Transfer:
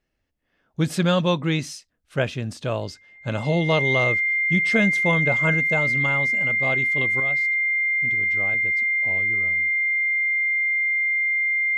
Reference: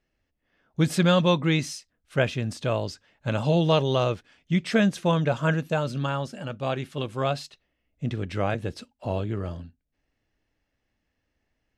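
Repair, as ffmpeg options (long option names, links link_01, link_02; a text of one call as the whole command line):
ffmpeg -i in.wav -af "bandreject=frequency=2100:width=30,asetnsamples=nb_out_samples=441:pad=0,asendcmd='7.2 volume volume 10dB',volume=0dB" out.wav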